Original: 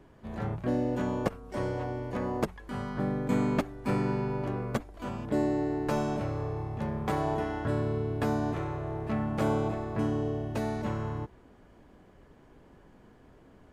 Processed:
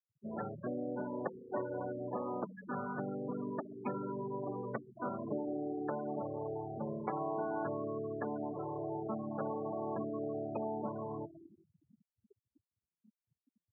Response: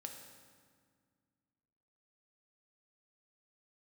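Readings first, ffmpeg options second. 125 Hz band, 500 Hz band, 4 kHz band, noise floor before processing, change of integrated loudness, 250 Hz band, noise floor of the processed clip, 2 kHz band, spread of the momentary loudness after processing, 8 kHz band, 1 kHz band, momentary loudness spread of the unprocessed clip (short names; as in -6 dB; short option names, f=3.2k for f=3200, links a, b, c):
-14.5 dB, -5.5 dB, under -35 dB, -57 dBFS, -8.0 dB, -9.0 dB, under -85 dBFS, -10.0 dB, 4 LU, under -25 dB, -5.5 dB, 7 LU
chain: -filter_complex "[0:a]acompressor=threshold=-35dB:ratio=20,asplit=2[a][b];[1:a]atrim=start_sample=2205,asetrate=33075,aresample=44100,lowpass=6k[c];[b][c]afir=irnorm=-1:irlink=0,volume=2dB[d];[a][d]amix=inputs=2:normalize=0,afftfilt=real='re*gte(hypot(re,im),0.0282)':imag='im*gte(hypot(re,im),0.0282)':win_size=1024:overlap=0.75,highpass=f=130:w=0.5412,highpass=f=130:w=1.3066,lowshelf=f=280:g=-12,volume=1dB"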